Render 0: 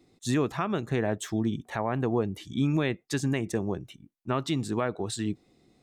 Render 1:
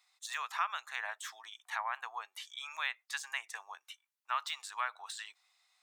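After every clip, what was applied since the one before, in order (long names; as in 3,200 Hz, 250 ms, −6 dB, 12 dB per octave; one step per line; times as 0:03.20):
de-essing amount 90%
Butterworth high-pass 930 Hz 36 dB per octave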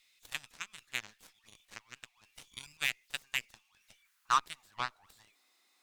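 converter with a step at zero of −47 dBFS
high-pass filter sweep 2,500 Hz → 280 Hz, 0:03.76–0:05.23
harmonic generator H 7 −16 dB, 8 −31 dB, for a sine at −15.5 dBFS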